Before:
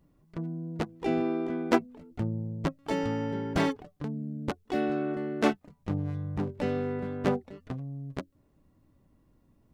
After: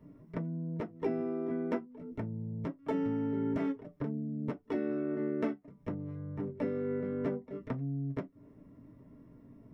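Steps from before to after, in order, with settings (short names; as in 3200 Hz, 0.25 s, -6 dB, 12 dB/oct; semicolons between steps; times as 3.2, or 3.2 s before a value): low shelf 350 Hz +11 dB; compressor 12:1, threshold -36 dBFS, peak gain reduction 24 dB; reverb RT60 0.15 s, pre-delay 3 ms, DRR 0 dB; gain -5.5 dB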